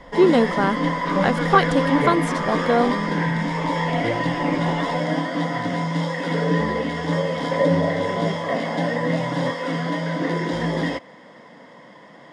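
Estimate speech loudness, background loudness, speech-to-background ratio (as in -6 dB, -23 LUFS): -21.0 LUFS, -23.0 LUFS, 2.0 dB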